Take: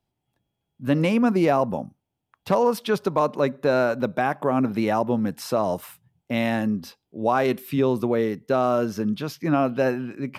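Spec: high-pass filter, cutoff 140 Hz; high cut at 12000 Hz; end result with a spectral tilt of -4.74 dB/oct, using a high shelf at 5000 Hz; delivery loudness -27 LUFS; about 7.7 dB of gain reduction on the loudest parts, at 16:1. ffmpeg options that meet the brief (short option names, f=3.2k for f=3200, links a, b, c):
-af "highpass=140,lowpass=12k,highshelf=f=5k:g=7.5,acompressor=threshold=-23dB:ratio=16,volume=2.5dB"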